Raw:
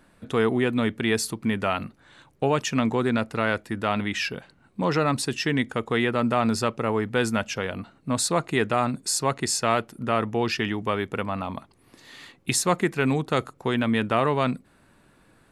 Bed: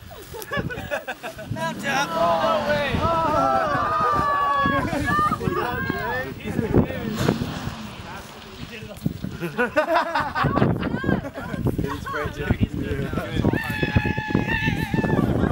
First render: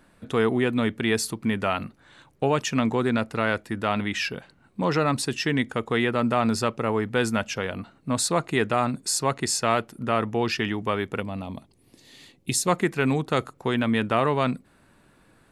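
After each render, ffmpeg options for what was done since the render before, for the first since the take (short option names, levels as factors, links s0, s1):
-filter_complex "[0:a]asettb=1/sr,asplit=3[s0][s1][s2];[s0]atrim=end=11.204[s3];[s1]atrim=start=11.2:end=12.68,asetpts=PTS-STARTPTS,afade=t=in:d=0.004:c=qsin,afade=t=out:st=1.476:d=0.004:c=qsin,equalizer=f=1300:t=o:w=1.5:g=-13[s4];[s2]atrim=start=12.676[s5];[s3][s4]acrossfade=d=0.004:c1=hsin:c2=qsin[s6];[s6][s5]acrossfade=d=0.004:c1=qsin:c2=hsin"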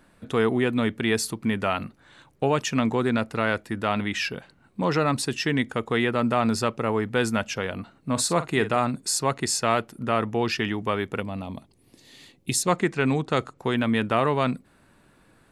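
-filter_complex "[0:a]asettb=1/sr,asplit=3[s0][s1][s2];[s0]atrim=end=8.114[s3];[s1]atrim=start=8.11:end=8.79,asetpts=PTS-STARTPTS,afade=t=in:d=0.004:c=qsin,afade=t=out:st=0.676:d=0.004:c=qsin,asplit=2[s4][s5];[s5]adelay=46,volume=0.237[s6];[s4][s6]amix=inputs=2:normalize=0,atrim=end_sample=29988[s7];[s2]atrim=start=8.786[s8];[s3][s7]acrossfade=d=0.004:c1=hsin:c2=qsin[s9];[s9][s8]acrossfade=d=0.004:c1=qsin:c2=hsin,asettb=1/sr,asplit=3[s10][s11][s12];[s10]atrim=end=12.634[s13];[s11]atrim=start=12.63:end=13.59,asetpts=PTS-STARTPTS,afade=t=in:d=0.004:c=qsin,afade=t=out:st=0.956:d=0.004:c=qsin,lowpass=f=8800:w=0.5412,lowpass=f=8800:w=1.3066[s14];[s12]atrim=start=13.586[s15];[s13][s14]acrossfade=d=0.004:c1=hsin:c2=qsin[s16];[s16][s15]acrossfade=d=0.004:c1=qsin:c2=hsin"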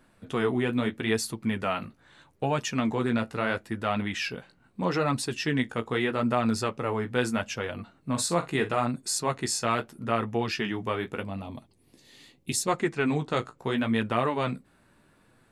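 -af "flanger=delay=7.9:depth=9.4:regen=-29:speed=0.78:shape=sinusoidal"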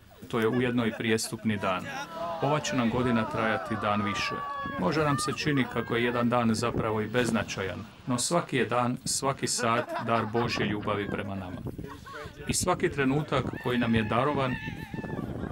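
-filter_complex "[1:a]volume=0.2[s0];[0:a][s0]amix=inputs=2:normalize=0"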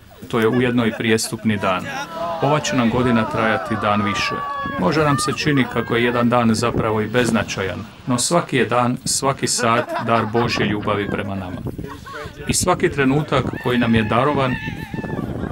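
-af "volume=2.99,alimiter=limit=0.891:level=0:latency=1"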